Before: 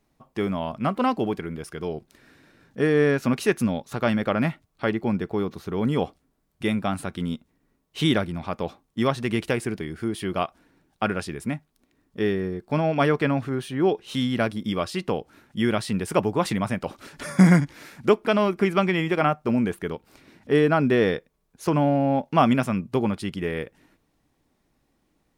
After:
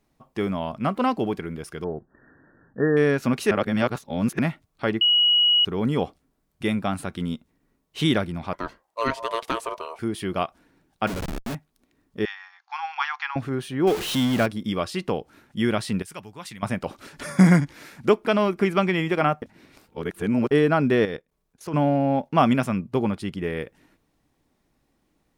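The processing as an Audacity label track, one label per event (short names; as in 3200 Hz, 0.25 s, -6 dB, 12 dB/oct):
1.840000	2.970000	brick-wall FIR low-pass 1900 Hz
3.510000	4.390000	reverse
5.010000	5.650000	bleep 2910 Hz -15 dBFS
8.530000	9.990000	ring modulator 800 Hz
11.070000	11.550000	Schmitt trigger flips at -30.5 dBFS
12.250000	13.360000	brick-wall FIR band-pass 740–6900 Hz
13.870000	14.460000	zero-crossing step of -25 dBFS
16.020000	16.630000	passive tone stack bass-middle-treble 5-5-5
19.420000	20.510000	reverse
21.050000	21.740000	level quantiser steps of 15 dB
22.280000	23.590000	mismatched tape noise reduction decoder only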